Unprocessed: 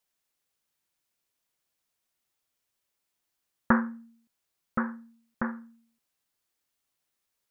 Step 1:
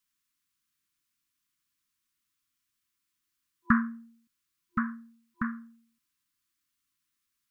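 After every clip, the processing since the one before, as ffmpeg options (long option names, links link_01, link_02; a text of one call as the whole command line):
ffmpeg -i in.wav -af "afftfilt=real='re*(1-between(b*sr/4096,350,1000))':imag='im*(1-between(b*sr/4096,350,1000))':win_size=4096:overlap=0.75" out.wav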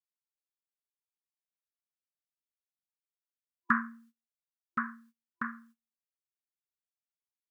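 ffmpeg -i in.wav -af "highpass=frequency=110:poles=1,agate=range=-27dB:threshold=-52dB:ratio=16:detection=peak,bass=frequency=250:gain=-14,treble=frequency=4000:gain=1" out.wav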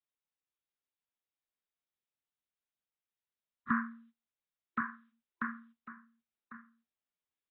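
ffmpeg -i in.wav -filter_complex "[0:a]acrossover=split=160|290|910[link_01][link_02][link_03][link_04];[link_04]alimiter=level_in=1.5dB:limit=-24dB:level=0:latency=1:release=36,volume=-1.5dB[link_05];[link_01][link_02][link_03][link_05]amix=inputs=4:normalize=0,aecho=1:1:1099:0.188" -ar 24000 -c:a aac -b:a 16k out.aac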